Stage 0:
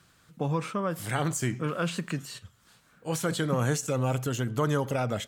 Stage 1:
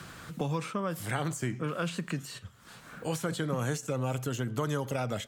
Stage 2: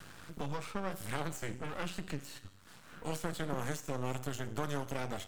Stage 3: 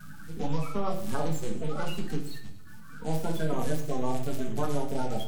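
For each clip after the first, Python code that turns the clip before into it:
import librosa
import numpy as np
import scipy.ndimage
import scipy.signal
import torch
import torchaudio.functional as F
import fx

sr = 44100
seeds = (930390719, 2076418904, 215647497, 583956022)

y1 = fx.band_squash(x, sr, depth_pct=70)
y1 = y1 * 10.0 ** (-4.0 / 20.0)
y2 = fx.vibrato(y1, sr, rate_hz=1.2, depth_cents=32.0)
y2 = fx.comb_fb(y2, sr, f0_hz=95.0, decay_s=0.89, harmonics='all', damping=0.0, mix_pct=60)
y2 = np.maximum(y2, 0.0)
y2 = y2 * 10.0 ** (5.0 / 20.0)
y3 = fx.spec_quant(y2, sr, step_db=30)
y3 = fx.echo_feedback(y3, sr, ms=117, feedback_pct=53, wet_db=-17.0)
y3 = fx.room_shoebox(y3, sr, seeds[0], volume_m3=310.0, walls='furnished', distance_m=1.5)
y3 = y3 * 10.0 ** (2.5 / 20.0)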